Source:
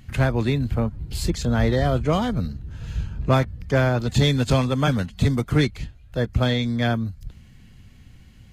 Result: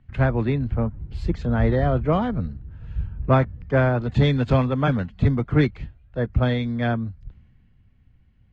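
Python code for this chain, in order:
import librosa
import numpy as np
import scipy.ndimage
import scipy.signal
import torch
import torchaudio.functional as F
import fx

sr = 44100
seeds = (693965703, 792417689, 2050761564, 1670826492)

y = scipy.signal.sosfilt(scipy.signal.butter(2, 2100.0, 'lowpass', fs=sr, output='sos'), x)
y = fx.band_widen(y, sr, depth_pct=40)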